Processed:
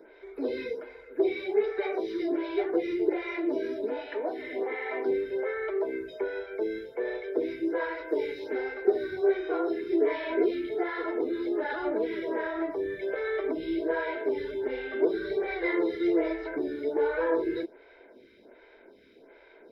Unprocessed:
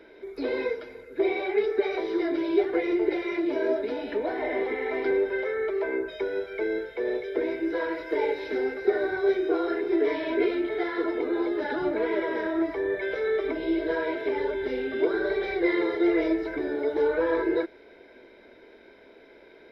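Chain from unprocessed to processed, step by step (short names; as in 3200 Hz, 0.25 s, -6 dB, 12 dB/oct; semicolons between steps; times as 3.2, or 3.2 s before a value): 4.02–5.07 low shelf 190 Hz -11 dB; photocell phaser 1.3 Hz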